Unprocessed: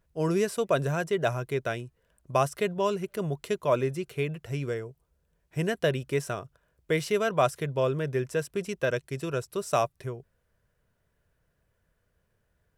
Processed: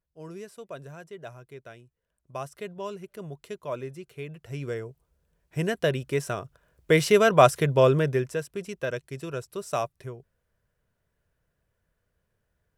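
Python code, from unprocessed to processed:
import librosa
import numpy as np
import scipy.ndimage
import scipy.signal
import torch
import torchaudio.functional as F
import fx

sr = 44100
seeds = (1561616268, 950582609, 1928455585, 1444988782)

y = fx.gain(x, sr, db=fx.line((1.79, -15.0), (2.76, -8.5), (4.21, -8.5), (4.83, 1.0), (6.19, 1.0), (7.06, 7.5), (7.97, 7.5), (8.45, -3.0)))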